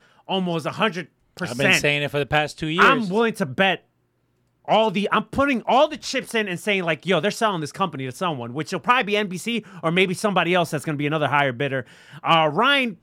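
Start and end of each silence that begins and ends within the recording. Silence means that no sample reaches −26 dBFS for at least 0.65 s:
0:03.75–0:04.68

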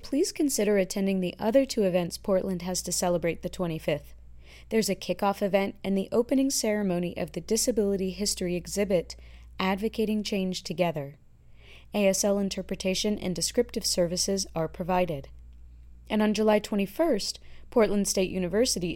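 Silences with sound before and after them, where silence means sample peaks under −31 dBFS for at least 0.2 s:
0:03.97–0:04.71
0:09.12–0:09.60
0:11.06–0:11.94
0:15.20–0:16.10
0:17.35–0:17.72

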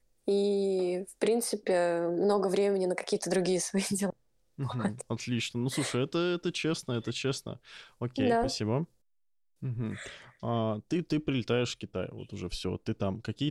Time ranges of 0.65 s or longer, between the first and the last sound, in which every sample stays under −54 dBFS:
0:08.85–0:09.62

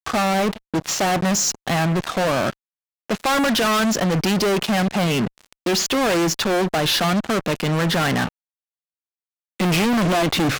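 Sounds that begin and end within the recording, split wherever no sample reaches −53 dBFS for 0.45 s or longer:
0:03.10–0:08.29

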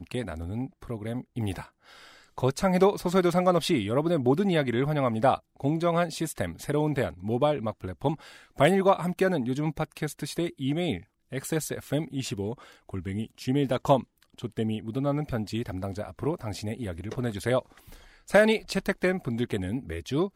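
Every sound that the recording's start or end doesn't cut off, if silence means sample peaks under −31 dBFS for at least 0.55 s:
0:02.38–0:17.60

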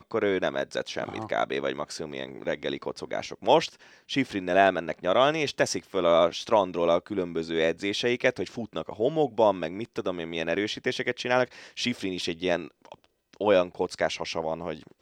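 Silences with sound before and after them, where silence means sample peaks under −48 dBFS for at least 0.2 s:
0:13.06–0:13.33

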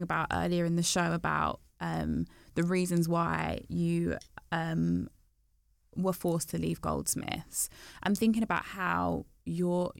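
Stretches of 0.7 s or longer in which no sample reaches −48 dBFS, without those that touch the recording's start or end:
0:05.08–0:05.93

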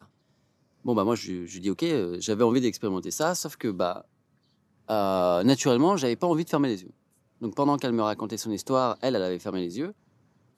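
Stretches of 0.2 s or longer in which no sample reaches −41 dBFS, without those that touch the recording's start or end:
0:04.01–0:04.88
0:06.90–0:07.42

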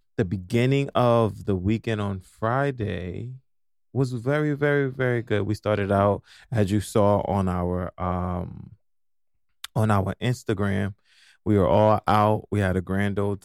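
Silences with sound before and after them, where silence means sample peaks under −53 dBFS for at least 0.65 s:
0:08.75–0:09.64

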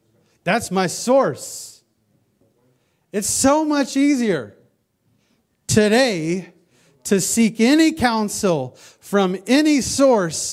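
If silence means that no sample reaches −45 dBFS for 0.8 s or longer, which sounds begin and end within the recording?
0:03.13–0:04.61

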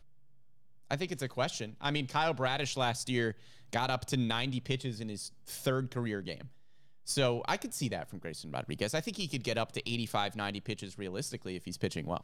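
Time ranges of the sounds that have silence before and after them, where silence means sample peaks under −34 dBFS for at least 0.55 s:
0:00.91–0:06.34

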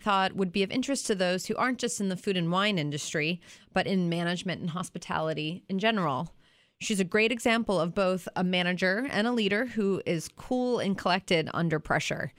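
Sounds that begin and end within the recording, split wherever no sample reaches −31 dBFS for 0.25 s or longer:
0:03.76–0:06.25

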